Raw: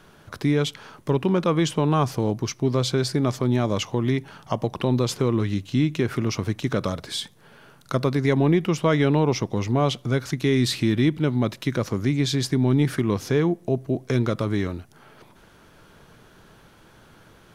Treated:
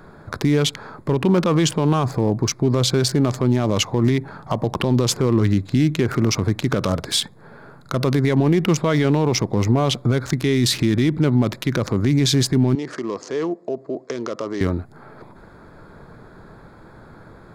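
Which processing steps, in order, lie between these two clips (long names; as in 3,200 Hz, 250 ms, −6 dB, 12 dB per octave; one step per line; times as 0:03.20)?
adaptive Wiener filter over 15 samples
high-shelf EQ 4,200 Hz +7 dB
brickwall limiter −17.5 dBFS, peak gain reduction 10 dB
0:12.75–0:14.61: loudspeaker in its box 440–6,900 Hz, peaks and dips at 810 Hz −7 dB, 1,500 Hz −8 dB, 2,300 Hz −7 dB, 3,700 Hz −8 dB
level +9 dB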